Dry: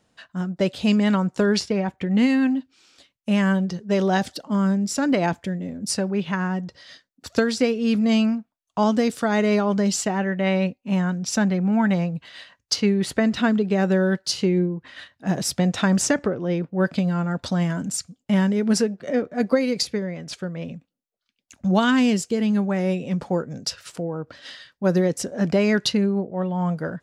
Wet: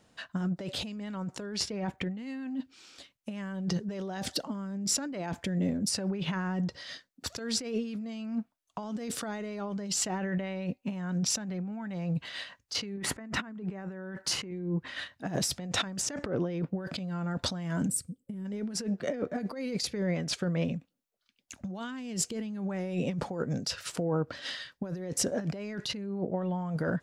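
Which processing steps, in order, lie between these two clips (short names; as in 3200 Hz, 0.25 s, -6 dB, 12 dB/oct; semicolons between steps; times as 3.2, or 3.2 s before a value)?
12.97–14.51 ten-band EQ 250 Hz +6 dB, 1000 Hz +8 dB, 2000 Hz +6 dB, 4000 Hz -8 dB; 17.88–18.45 spectral gain 550–7600 Hz -16 dB; negative-ratio compressor -29 dBFS, ratio -1; gain -5 dB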